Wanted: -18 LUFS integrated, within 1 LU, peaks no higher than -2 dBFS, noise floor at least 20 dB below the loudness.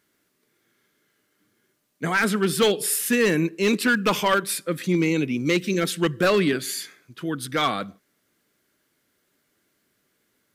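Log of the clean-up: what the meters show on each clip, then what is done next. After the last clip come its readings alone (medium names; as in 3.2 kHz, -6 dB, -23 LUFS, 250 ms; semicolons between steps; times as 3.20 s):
clipped samples 0.6%; clipping level -13.5 dBFS; loudness -23.0 LUFS; peak level -13.5 dBFS; loudness target -18.0 LUFS
-> clip repair -13.5 dBFS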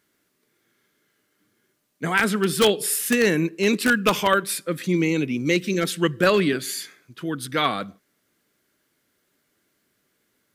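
clipped samples 0.0%; loudness -22.0 LUFS; peak level -4.5 dBFS; loudness target -18.0 LUFS
-> trim +4 dB; peak limiter -2 dBFS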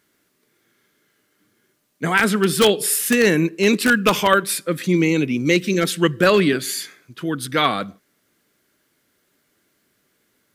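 loudness -18.5 LUFS; peak level -2.0 dBFS; noise floor -67 dBFS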